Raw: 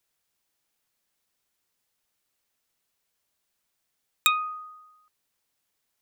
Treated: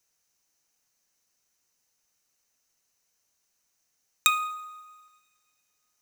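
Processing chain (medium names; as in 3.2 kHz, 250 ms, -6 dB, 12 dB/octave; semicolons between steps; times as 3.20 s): peaking EQ 6.1 kHz +12.5 dB 0.35 oct; band-stop 3.4 kHz, Q 9.4; two-slope reverb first 0.7 s, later 2.5 s, from -16 dB, DRR 13 dB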